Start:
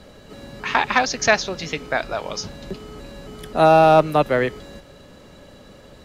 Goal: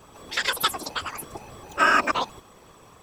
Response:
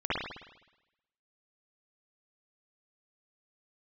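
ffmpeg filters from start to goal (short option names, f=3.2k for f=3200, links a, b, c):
-af "bandreject=f=4.6k:w=17,asetrate=88200,aresample=44100,afftfilt=real='hypot(re,im)*cos(2*PI*random(0))':imag='hypot(re,im)*sin(2*PI*random(1))':win_size=512:overlap=0.75"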